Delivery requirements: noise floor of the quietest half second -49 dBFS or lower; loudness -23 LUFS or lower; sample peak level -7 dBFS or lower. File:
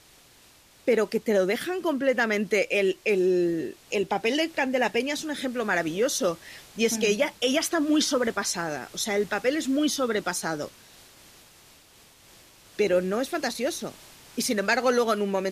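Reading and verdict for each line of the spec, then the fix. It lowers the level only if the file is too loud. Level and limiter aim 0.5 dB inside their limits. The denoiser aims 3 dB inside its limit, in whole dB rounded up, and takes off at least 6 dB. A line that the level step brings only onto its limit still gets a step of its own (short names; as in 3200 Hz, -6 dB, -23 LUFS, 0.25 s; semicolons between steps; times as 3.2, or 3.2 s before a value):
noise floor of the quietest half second -56 dBFS: OK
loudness -25.5 LUFS: OK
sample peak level -11.5 dBFS: OK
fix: none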